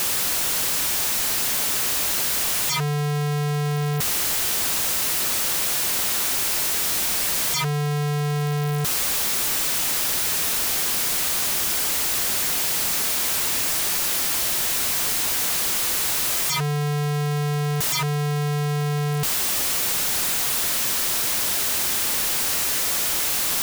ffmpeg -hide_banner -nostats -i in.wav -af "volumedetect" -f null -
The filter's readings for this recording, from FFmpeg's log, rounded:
mean_volume: -22.9 dB
max_volume: -22.9 dB